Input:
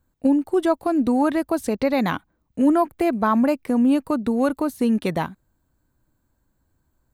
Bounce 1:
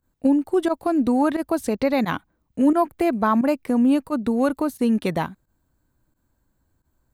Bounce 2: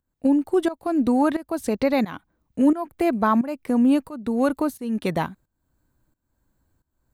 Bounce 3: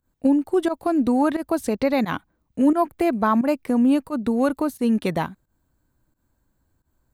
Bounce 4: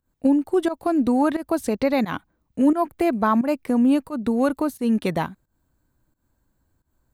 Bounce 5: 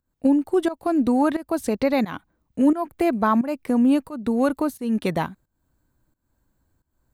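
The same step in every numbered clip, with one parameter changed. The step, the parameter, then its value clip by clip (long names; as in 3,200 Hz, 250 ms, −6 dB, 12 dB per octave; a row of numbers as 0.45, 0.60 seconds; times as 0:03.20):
fake sidechain pumping, release: 65, 462, 106, 158, 308 milliseconds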